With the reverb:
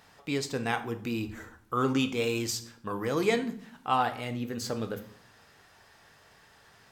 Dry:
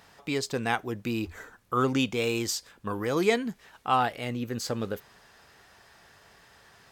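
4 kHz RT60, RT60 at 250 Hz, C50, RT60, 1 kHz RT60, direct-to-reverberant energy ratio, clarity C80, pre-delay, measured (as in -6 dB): 0.45 s, 0.95 s, 13.5 dB, 0.60 s, 0.60 s, 8.0 dB, 17.5 dB, 4 ms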